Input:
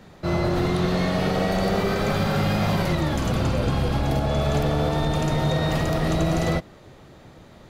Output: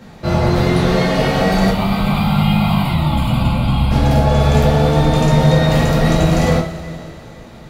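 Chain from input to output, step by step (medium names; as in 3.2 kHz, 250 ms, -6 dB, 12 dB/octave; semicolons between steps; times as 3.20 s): 1.70–3.91 s: static phaser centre 1.7 kHz, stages 6; two-slope reverb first 0.31 s, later 3.1 s, from -18 dB, DRR -2.5 dB; trim +4 dB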